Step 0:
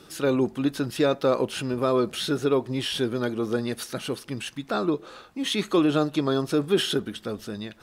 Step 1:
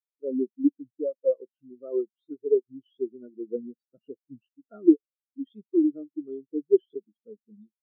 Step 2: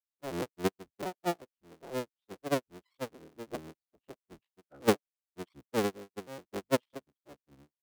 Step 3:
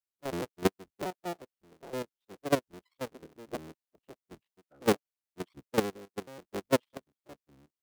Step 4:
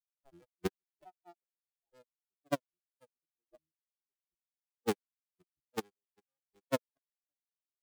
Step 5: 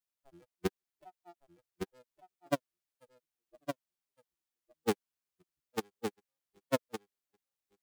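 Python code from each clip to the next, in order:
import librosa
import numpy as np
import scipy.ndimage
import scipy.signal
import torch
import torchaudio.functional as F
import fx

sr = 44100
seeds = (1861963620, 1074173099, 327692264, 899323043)

y1 = fx.highpass(x, sr, hz=82.0, slope=6)
y1 = fx.rider(y1, sr, range_db=5, speed_s=0.5)
y1 = fx.spectral_expand(y1, sr, expansion=4.0)
y1 = y1 * librosa.db_to_amplitude(5.5)
y2 = fx.cycle_switch(y1, sr, every=3, mode='inverted')
y2 = y2 * librosa.db_to_amplitude(-8.5)
y3 = fx.level_steps(y2, sr, step_db=13)
y3 = y3 * librosa.db_to_amplitude(5.5)
y4 = fx.bin_expand(y3, sr, power=3.0)
y4 = y4 * librosa.db_to_amplitude(-3.0)
y5 = y4 + 10.0 ** (-6.0 / 20.0) * np.pad(y4, (int(1162 * sr / 1000.0), 0))[:len(y4)]
y5 = y5 * librosa.db_to_amplitude(1.5)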